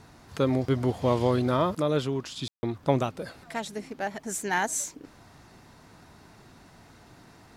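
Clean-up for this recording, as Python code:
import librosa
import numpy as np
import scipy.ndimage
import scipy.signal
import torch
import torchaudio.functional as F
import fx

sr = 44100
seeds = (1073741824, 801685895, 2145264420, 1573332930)

y = fx.fix_declick_ar(x, sr, threshold=6.5)
y = fx.fix_ambience(y, sr, seeds[0], print_start_s=6.58, print_end_s=7.08, start_s=2.48, end_s=2.63)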